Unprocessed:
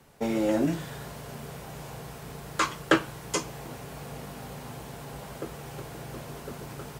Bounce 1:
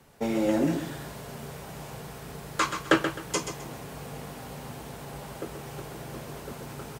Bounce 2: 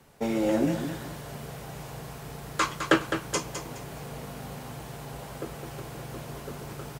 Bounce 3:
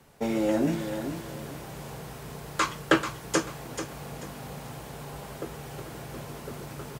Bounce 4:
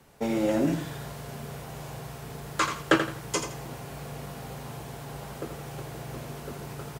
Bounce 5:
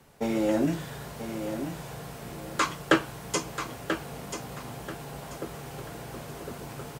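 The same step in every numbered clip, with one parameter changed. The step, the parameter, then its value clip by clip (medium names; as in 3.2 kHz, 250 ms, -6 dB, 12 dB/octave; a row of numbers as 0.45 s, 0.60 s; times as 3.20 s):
feedback delay, time: 130 ms, 209 ms, 438 ms, 83 ms, 986 ms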